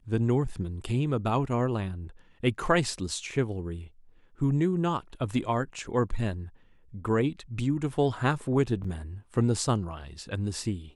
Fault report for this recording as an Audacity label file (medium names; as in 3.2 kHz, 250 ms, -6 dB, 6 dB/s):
8.840000	8.840000	dropout 4.9 ms